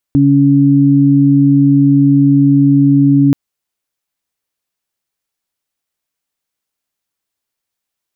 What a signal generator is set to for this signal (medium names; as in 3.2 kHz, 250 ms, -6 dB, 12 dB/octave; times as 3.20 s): steady additive tone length 3.18 s, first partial 140 Hz, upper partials 3.5 dB, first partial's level -10.5 dB